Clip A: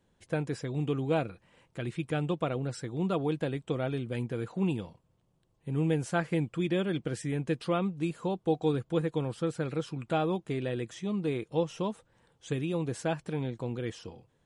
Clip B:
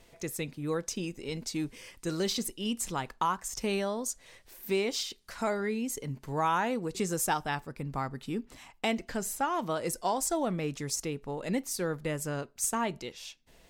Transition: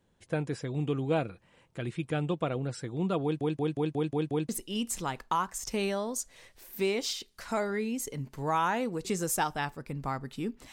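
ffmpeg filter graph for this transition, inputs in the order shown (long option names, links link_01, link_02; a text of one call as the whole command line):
ffmpeg -i cue0.wav -i cue1.wav -filter_complex "[0:a]apad=whole_dur=10.72,atrim=end=10.72,asplit=7[link_01][link_02][link_03][link_04][link_05][link_06][link_07];[link_01]atrim=end=3.412[link_08];[link_02]atrim=start=3.228:end=3.412[link_09];[link_03]atrim=start=3.228:end=3.412[link_10];[link_04]atrim=start=3.228:end=3.412[link_11];[link_05]atrim=start=3.228:end=3.412[link_12];[link_06]atrim=start=3.228:end=3.412[link_13];[link_07]atrim=start=3.228:end=3.412[link_14];[1:a]atrim=start=2.388:end=8.62[link_15];[link_08][link_09]acrossfade=duration=0.004:curve1=hsin:curve2=hsin[link_16];[link_16][link_10]acrossfade=duration=0.004:curve1=hsin:curve2=hsin[link_17];[link_17][link_11]acrossfade=duration=0.004:curve1=hsin:curve2=hsin[link_18];[link_18][link_12]acrossfade=duration=0.004:curve1=hsin:curve2=hsin[link_19];[link_19][link_13]acrossfade=duration=0.004:curve1=hsin:curve2=hsin[link_20];[link_20][link_14]acrossfade=duration=0.004:curve1=hsin:curve2=hsin[link_21];[link_21][link_15]acrossfade=duration=0.004:curve1=hsin:curve2=hsin" out.wav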